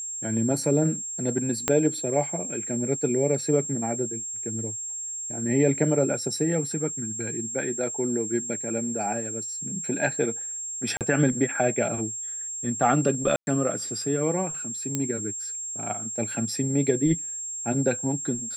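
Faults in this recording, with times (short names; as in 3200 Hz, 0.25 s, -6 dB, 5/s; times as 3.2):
tone 7500 Hz -31 dBFS
1.68 pop -7 dBFS
10.97–11.01 gap 38 ms
13.36–13.47 gap 0.111 s
14.95 pop -12 dBFS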